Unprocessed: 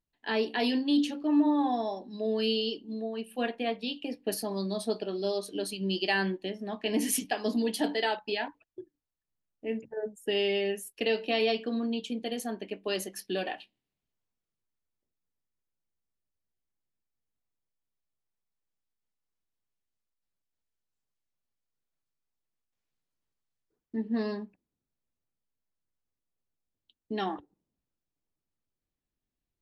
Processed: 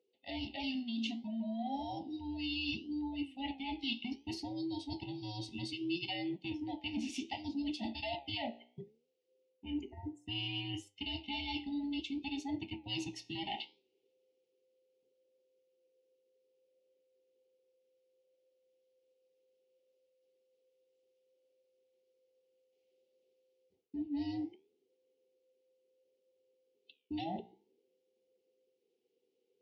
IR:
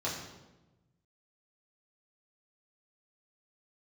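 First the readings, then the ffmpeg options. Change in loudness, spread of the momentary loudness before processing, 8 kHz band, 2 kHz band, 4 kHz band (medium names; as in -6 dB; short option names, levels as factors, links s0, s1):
-9.0 dB, 10 LU, -16.5 dB, -9.5 dB, -5.0 dB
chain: -af "afftfilt=real='real(if(between(b,1,1008),(2*floor((b-1)/24)+1)*24-b,b),0)':imag='imag(if(between(b,1,1008),(2*floor((b-1)/24)+1)*24-b,b),0)*if(between(b,1,1008),-1,1)':win_size=2048:overlap=0.75,equalizer=f=390:t=o:w=0.38:g=14,areverse,acompressor=threshold=0.0126:ratio=8,areverse,flanger=delay=9.9:depth=7.3:regen=80:speed=0.64:shape=sinusoidal,asuperstop=centerf=1300:order=12:qfactor=1.2,highpass=140,equalizer=f=150:t=q:w=4:g=-9,equalizer=f=1200:t=q:w=4:g=-7,equalizer=f=1800:t=q:w=4:g=-6,equalizer=f=2900:t=q:w=4:g=6,lowpass=f=5900:w=0.5412,lowpass=f=5900:w=1.3066,volume=2.51"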